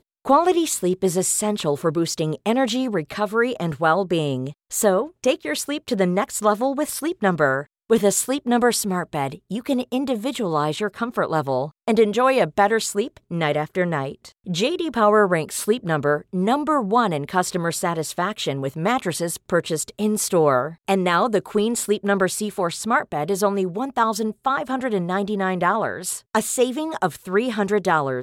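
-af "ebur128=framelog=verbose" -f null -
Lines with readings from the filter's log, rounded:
Integrated loudness:
  I:         -21.7 LUFS
  Threshold: -31.7 LUFS
Loudness range:
  LRA:         2.1 LU
  Threshold: -41.8 LUFS
  LRA low:   -22.9 LUFS
  LRA high:  -20.8 LUFS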